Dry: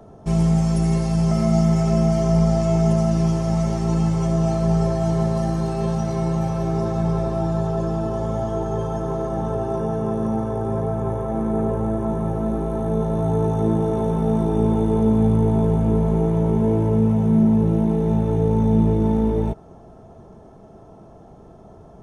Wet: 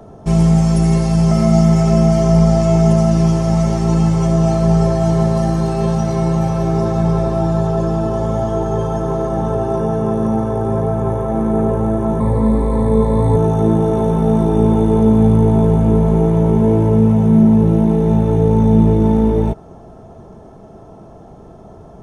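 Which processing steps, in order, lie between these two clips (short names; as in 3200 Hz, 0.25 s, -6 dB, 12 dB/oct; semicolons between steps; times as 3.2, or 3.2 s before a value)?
12.2–13.36 ripple EQ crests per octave 0.98, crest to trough 15 dB; gain +6 dB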